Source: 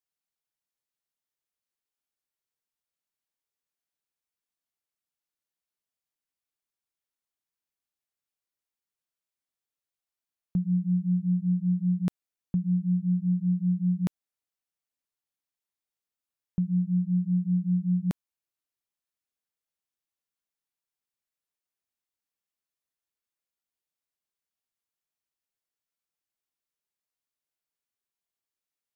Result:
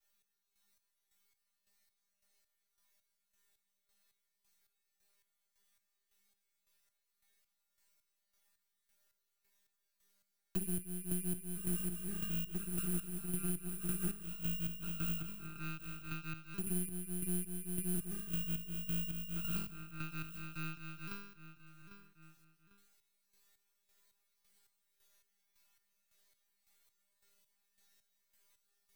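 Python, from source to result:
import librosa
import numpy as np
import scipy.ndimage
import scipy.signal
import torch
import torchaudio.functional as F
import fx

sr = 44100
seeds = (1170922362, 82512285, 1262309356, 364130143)

p1 = fx.bit_reversed(x, sr, seeds[0], block=32)
p2 = p1 + 0.53 * np.pad(p1, (int(4.5 * sr / 1000.0), 0))[:len(p1)]
p3 = fx.echo_pitch(p2, sr, ms=373, semitones=-1, count=2, db_per_echo=-6.0)
p4 = fx.comb_fb(p3, sr, f0_hz=200.0, decay_s=0.62, harmonics='odd', damping=0.0, mix_pct=100)
p5 = fx.chopper(p4, sr, hz=1.8, depth_pct=65, duty_pct=40)
p6 = fx.rider(p5, sr, range_db=10, speed_s=0.5)
p7 = p5 + (p6 * librosa.db_to_amplitude(2.0))
p8 = fx.graphic_eq_10(p7, sr, hz=(125, 250, 500), db=(7, -12, -5))
p9 = np.maximum(p8, 0.0)
p10 = p9 + fx.echo_feedback(p9, sr, ms=798, feedback_pct=25, wet_db=-23.0, dry=0)
p11 = fx.band_squash(p10, sr, depth_pct=70)
y = p11 * librosa.db_to_amplitude(9.0)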